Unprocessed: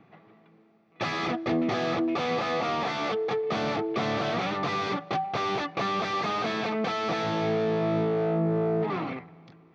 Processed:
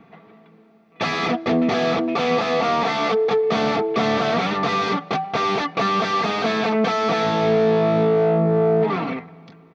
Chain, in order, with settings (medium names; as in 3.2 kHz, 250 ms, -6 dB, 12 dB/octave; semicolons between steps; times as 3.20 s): comb 4.4 ms, depth 48%; trim +6.5 dB